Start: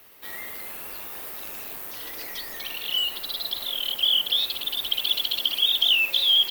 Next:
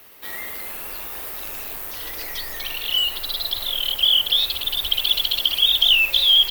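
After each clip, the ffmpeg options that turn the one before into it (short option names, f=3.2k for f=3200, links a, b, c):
-af "asubboost=boost=7:cutoff=81,volume=4.5dB"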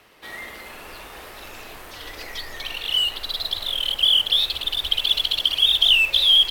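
-af "adynamicsmooth=sensitivity=3:basefreq=6.5k"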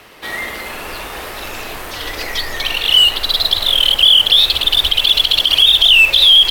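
-af "alimiter=level_in=13dB:limit=-1dB:release=50:level=0:latency=1,volume=-1dB"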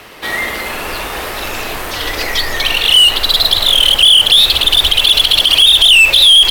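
-af "acontrast=75,volume=-1dB"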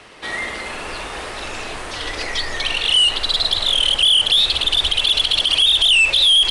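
-af "aresample=22050,aresample=44100,volume=-7dB"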